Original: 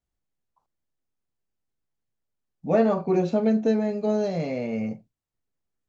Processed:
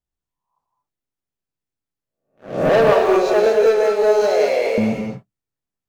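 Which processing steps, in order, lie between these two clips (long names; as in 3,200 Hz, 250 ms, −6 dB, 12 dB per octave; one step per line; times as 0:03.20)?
peak hold with a rise ahead of every peak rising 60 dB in 0.52 s
0:02.69–0:04.78: Chebyshev high-pass filter 410 Hz, order 4
leveller curve on the samples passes 3
reverb whose tail is shaped and stops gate 250 ms rising, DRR 1.5 dB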